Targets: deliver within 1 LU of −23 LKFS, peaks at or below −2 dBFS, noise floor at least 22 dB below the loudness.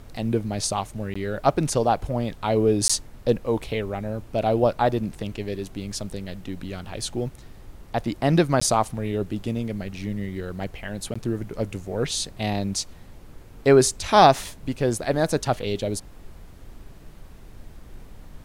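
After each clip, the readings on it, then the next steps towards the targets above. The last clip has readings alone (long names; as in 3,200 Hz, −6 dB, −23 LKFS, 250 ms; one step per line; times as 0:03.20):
number of dropouts 4; longest dropout 15 ms; background noise floor −45 dBFS; target noise floor −47 dBFS; integrated loudness −24.5 LKFS; sample peak −2.5 dBFS; target loudness −23.0 LKFS
→ repair the gap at 0:01.14/0:02.88/0:08.60/0:11.14, 15 ms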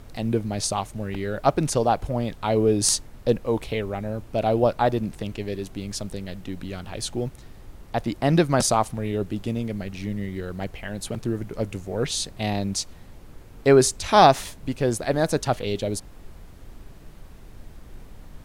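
number of dropouts 0; background noise floor −45 dBFS; target noise floor −47 dBFS
→ noise reduction from a noise print 6 dB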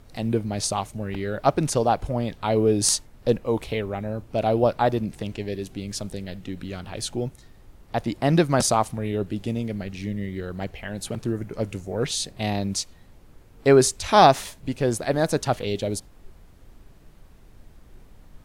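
background noise floor −51 dBFS; integrated loudness −24.5 LKFS; sample peak −2.5 dBFS; target loudness −23.0 LKFS
→ level +1.5 dB
brickwall limiter −2 dBFS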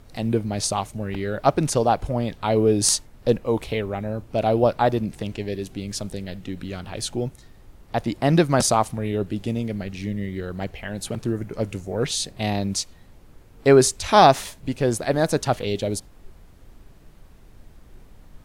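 integrated loudness −23.0 LKFS; sample peak −2.0 dBFS; background noise floor −49 dBFS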